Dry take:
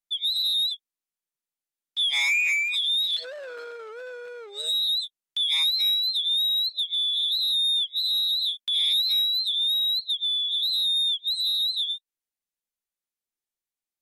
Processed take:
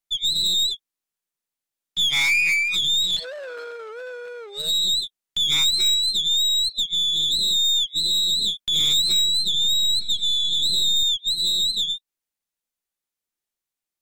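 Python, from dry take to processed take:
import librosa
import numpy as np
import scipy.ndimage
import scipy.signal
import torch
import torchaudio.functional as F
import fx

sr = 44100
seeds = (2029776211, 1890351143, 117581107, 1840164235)

y = fx.tracing_dist(x, sr, depth_ms=0.029)
y = fx.spec_erase(y, sr, start_s=6.43, length_s=0.46, low_hz=680.0, high_hz=1900.0)
y = fx.echo_opening(y, sr, ms=181, hz=400, octaves=1, feedback_pct=70, wet_db=-6, at=(9.02, 11.03))
y = y * librosa.db_to_amplitude(3.5)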